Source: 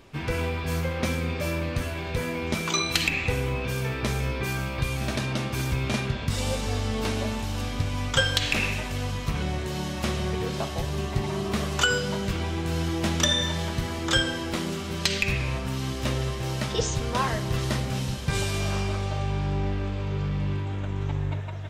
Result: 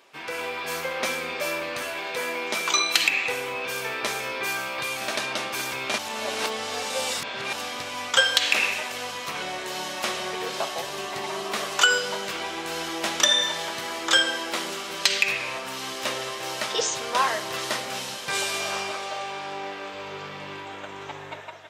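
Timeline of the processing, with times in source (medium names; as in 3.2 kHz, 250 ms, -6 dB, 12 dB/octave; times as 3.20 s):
1.99–2.82 s: high-pass 150 Hz
5.98–7.53 s: reverse
18.91–19.94 s: high-pass 230 Hz 6 dB/octave
whole clip: high-pass 570 Hz 12 dB/octave; level rider gain up to 5 dB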